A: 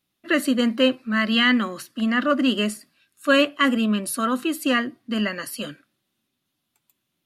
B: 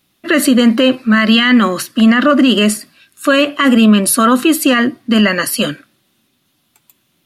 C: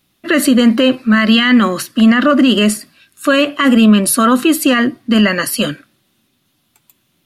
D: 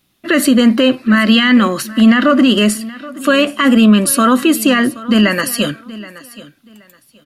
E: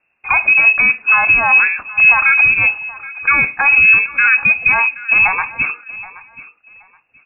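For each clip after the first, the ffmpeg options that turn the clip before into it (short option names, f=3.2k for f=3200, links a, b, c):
-af "alimiter=level_in=16.5dB:limit=-1dB:release=50:level=0:latency=1,volume=-1dB"
-af "lowshelf=f=120:g=5,volume=-1dB"
-af "aecho=1:1:775|1550:0.119|0.0261"
-af "lowpass=f=2.4k:t=q:w=0.5098,lowpass=f=2.4k:t=q:w=0.6013,lowpass=f=2.4k:t=q:w=0.9,lowpass=f=2.4k:t=q:w=2.563,afreqshift=-2800,volume=-1dB"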